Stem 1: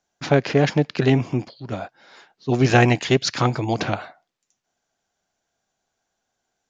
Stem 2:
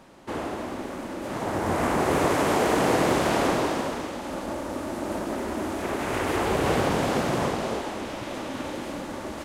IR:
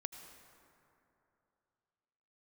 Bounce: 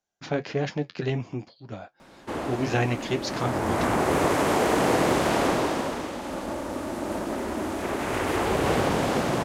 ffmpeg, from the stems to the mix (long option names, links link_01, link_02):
-filter_complex "[0:a]flanger=delay=8.9:depth=2.7:regen=-49:speed=1.7:shape=triangular,volume=-5.5dB[link_01];[1:a]adelay=2000,volume=0dB[link_02];[link_01][link_02]amix=inputs=2:normalize=0"